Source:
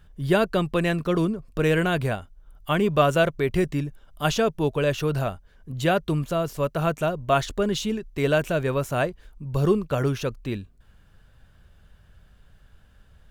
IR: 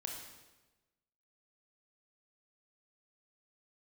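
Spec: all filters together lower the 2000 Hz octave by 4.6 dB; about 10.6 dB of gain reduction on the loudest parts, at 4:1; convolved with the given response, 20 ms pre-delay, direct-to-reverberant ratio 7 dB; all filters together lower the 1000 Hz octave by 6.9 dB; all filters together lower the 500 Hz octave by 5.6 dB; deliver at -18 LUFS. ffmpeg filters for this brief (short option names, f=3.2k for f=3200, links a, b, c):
-filter_complex "[0:a]equalizer=f=500:t=o:g=-5,equalizer=f=1k:t=o:g=-7.5,equalizer=f=2k:t=o:g=-3,acompressor=threshold=-31dB:ratio=4,asplit=2[a][b];[1:a]atrim=start_sample=2205,adelay=20[c];[b][c]afir=irnorm=-1:irlink=0,volume=-6dB[d];[a][d]amix=inputs=2:normalize=0,volume=16.5dB"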